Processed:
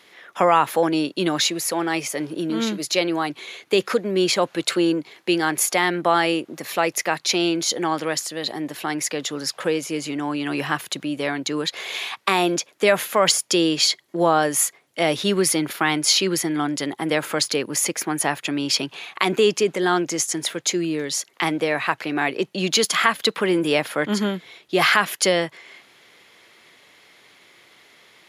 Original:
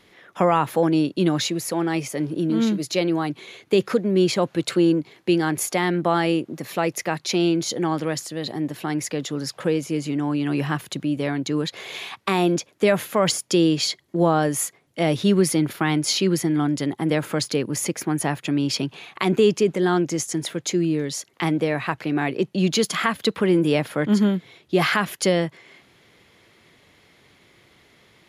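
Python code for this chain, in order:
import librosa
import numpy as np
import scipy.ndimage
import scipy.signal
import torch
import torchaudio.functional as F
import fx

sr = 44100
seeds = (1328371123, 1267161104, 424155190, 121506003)

y = fx.highpass(x, sr, hz=700.0, slope=6)
y = y * 10.0 ** (5.5 / 20.0)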